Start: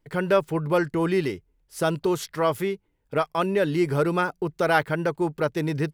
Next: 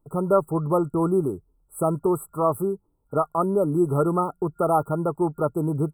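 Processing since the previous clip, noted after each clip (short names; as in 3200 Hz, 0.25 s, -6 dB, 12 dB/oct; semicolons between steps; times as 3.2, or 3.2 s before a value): FFT band-reject 1400–7700 Hz; bell 510 Hz -3.5 dB 0.31 oct; gain +2 dB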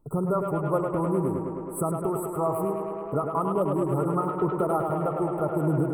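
compressor 2:1, threshold -31 dBFS, peak gain reduction 9.5 dB; phaser 0.67 Hz, delay 1.8 ms, feedback 31%; on a send: tape echo 0.104 s, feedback 88%, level -4.5 dB, low-pass 5800 Hz; on the sum: gain +2 dB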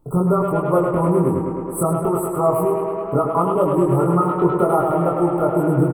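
doubler 23 ms -2 dB; gain +6 dB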